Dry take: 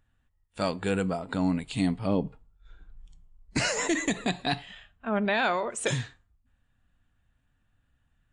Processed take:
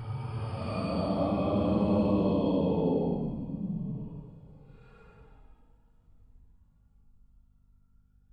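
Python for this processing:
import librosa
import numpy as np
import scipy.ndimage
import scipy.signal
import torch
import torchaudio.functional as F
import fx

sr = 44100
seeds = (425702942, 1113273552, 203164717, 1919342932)

y = fx.paulstretch(x, sr, seeds[0], factor=15.0, window_s=0.05, from_s=2.0)
y = fx.add_hum(y, sr, base_hz=50, snr_db=35)
y = F.gain(torch.from_numpy(y), -2.0).numpy()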